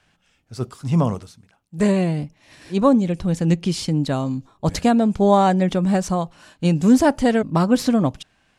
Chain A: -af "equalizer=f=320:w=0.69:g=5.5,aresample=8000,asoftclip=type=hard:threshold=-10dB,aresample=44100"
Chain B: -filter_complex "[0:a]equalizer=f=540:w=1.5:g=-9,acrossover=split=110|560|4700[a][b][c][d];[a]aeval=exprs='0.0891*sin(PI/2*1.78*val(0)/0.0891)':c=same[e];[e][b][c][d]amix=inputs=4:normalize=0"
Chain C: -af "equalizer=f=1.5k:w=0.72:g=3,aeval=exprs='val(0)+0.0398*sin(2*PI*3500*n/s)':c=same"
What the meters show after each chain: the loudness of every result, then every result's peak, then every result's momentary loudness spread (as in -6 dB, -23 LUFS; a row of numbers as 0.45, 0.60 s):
-17.5, -20.5, -19.0 LUFS; -9.0, -6.0, -3.0 dBFS; 10, 11, 12 LU